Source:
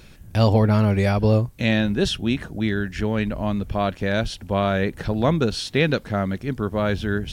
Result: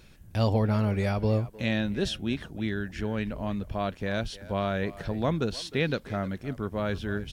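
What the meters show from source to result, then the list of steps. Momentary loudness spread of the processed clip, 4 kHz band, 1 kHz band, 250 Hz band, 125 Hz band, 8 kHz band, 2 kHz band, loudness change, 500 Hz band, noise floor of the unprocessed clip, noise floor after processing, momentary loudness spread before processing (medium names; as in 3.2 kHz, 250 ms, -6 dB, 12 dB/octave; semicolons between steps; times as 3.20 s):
7 LU, -7.5 dB, -7.5 dB, -7.5 dB, -7.5 dB, -7.5 dB, -7.5 dB, -7.5 dB, -7.5 dB, -46 dBFS, -52 dBFS, 7 LU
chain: speakerphone echo 310 ms, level -16 dB; trim -7.5 dB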